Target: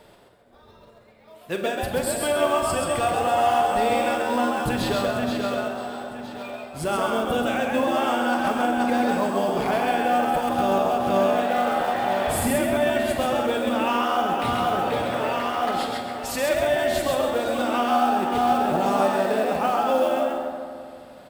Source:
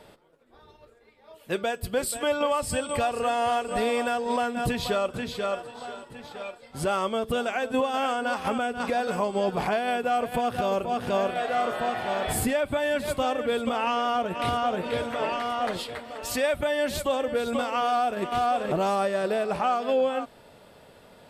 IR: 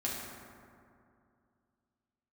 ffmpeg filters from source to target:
-filter_complex "[0:a]asplit=5[a][b][c][d][e];[b]adelay=133,afreqshift=77,volume=-3.5dB[f];[c]adelay=266,afreqshift=154,volume=-13.1dB[g];[d]adelay=399,afreqshift=231,volume=-22.8dB[h];[e]adelay=532,afreqshift=308,volume=-32.4dB[i];[a][f][g][h][i]amix=inputs=5:normalize=0,acrusher=bits=6:mode=log:mix=0:aa=0.000001,asplit=2[j][k];[1:a]atrim=start_sample=2205,adelay=41[l];[k][l]afir=irnorm=-1:irlink=0,volume=-9dB[m];[j][m]amix=inputs=2:normalize=0"

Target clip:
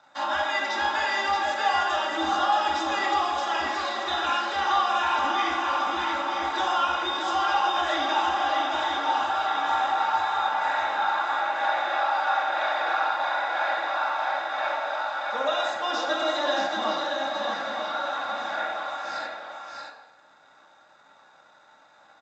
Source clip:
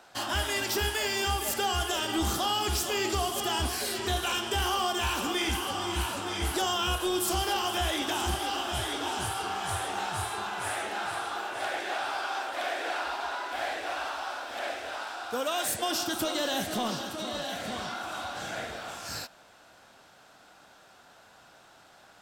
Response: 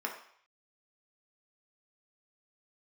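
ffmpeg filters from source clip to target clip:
-filter_complex "[0:a]acrossover=split=560 4600:gain=0.158 1 0.224[a][b][c];[a][b][c]amix=inputs=3:normalize=0,aecho=1:1:3.6:0.6,aresample=16000,aeval=exprs='sgn(val(0))*max(abs(val(0))-0.00126,0)':c=same,aresample=44100,aecho=1:1:628:0.631[d];[1:a]atrim=start_sample=2205,asetrate=30870,aresample=44100[e];[d][e]afir=irnorm=-1:irlink=0"

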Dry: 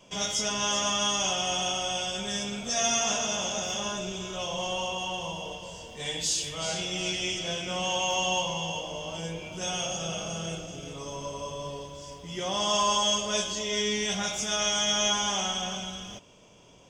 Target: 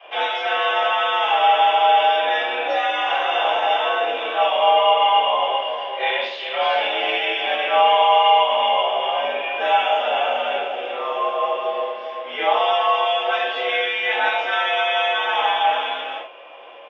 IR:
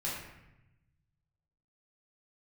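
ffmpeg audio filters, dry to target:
-filter_complex "[0:a]acompressor=threshold=-30dB:ratio=6,highpass=f=420:t=q:w=0.5412,highpass=f=420:t=q:w=1.307,lowpass=f=2.9k:t=q:w=0.5176,lowpass=f=2.9k:t=q:w=0.7071,lowpass=f=2.9k:t=q:w=1.932,afreqshift=77,asplit=2[a][b];[b]asetrate=33038,aresample=44100,atempo=1.33484,volume=-13dB[c];[a][c]amix=inputs=2:normalize=0[d];[1:a]atrim=start_sample=2205,atrim=end_sample=4410[e];[d][e]afir=irnorm=-1:irlink=0,acontrast=76,volume=8dB"

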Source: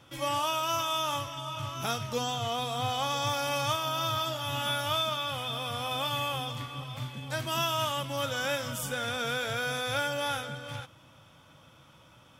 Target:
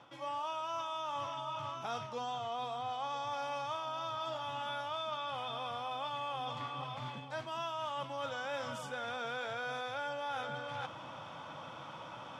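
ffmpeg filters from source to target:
-af "equalizer=f=860:w=1.1:g=10,areverse,acompressor=threshold=-45dB:ratio=5,areverse,highpass=140,lowpass=5.3k,volume=6dB"

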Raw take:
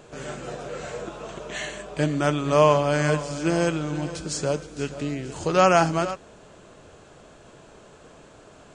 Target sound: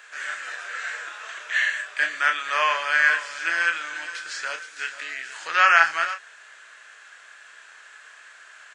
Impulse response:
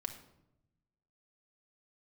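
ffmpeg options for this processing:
-filter_complex "[0:a]highpass=f=1.7k:t=q:w=4.5,acrossover=split=4500[a][b];[b]acompressor=threshold=-47dB:ratio=4:attack=1:release=60[c];[a][c]amix=inputs=2:normalize=0,asplit=2[d][e];[e]adelay=30,volume=-7dB[f];[d][f]amix=inputs=2:normalize=0,volume=2dB"

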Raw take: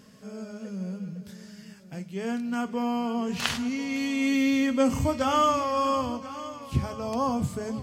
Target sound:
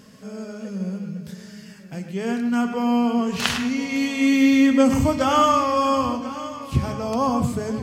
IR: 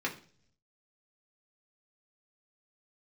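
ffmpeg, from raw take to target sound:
-filter_complex "[0:a]asplit=2[a][b];[1:a]atrim=start_sample=2205,adelay=105[c];[b][c]afir=irnorm=-1:irlink=0,volume=-13dB[d];[a][d]amix=inputs=2:normalize=0,volume=5dB"

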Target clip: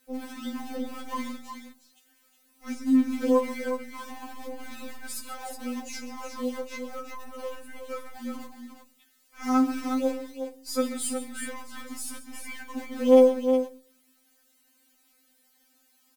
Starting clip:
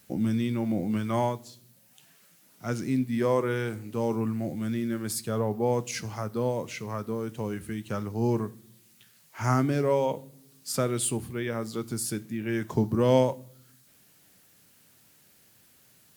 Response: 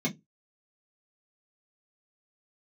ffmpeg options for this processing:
-filter_complex "[0:a]asplit=2[a][b];[b]acrusher=bits=5:dc=4:mix=0:aa=0.000001,volume=-7.5dB[c];[a][c]amix=inputs=2:normalize=0,aecho=1:1:41|45|136|364:0.141|0.119|0.188|0.422,afftfilt=real='re*3.46*eq(mod(b,12),0)':imag='im*3.46*eq(mod(b,12),0)':win_size=2048:overlap=0.75,volume=-4dB"

